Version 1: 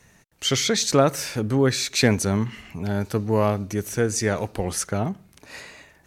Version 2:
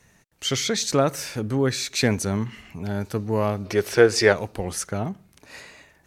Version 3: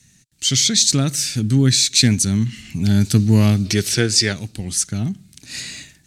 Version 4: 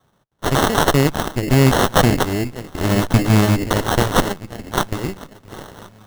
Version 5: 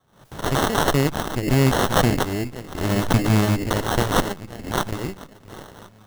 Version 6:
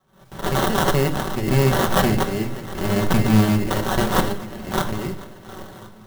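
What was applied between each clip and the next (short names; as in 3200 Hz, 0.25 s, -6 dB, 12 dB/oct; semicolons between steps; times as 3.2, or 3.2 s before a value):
spectral gain 3.65–4.32, 340–5600 Hz +11 dB; gain -2.5 dB
graphic EQ 125/250/500/1000/4000/8000 Hz +7/+6/-12/-12/+8/+11 dB; AGC gain up to 13.5 dB; gain -1 dB
echo with dull and thin repeats by turns 0.526 s, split 1400 Hz, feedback 67%, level -12 dB; added harmonics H 4 -11 dB, 7 -22 dB, 8 -15 dB, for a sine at -1.5 dBFS; sample-rate reducer 2400 Hz, jitter 0%; gain -1.5 dB
backwards sustainer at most 110 dB/s; gain -4.5 dB
multi-head echo 0.237 s, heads first and third, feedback 49%, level -21 dB; on a send at -2.5 dB: reverb, pre-delay 5 ms; on the sum: clock jitter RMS 0.026 ms; gain -1.5 dB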